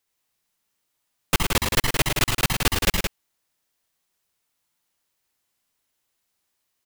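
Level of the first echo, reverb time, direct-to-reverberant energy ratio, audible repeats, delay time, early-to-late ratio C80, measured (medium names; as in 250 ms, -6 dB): -6.0 dB, no reverb, no reverb, 3, 69 ms, no reverb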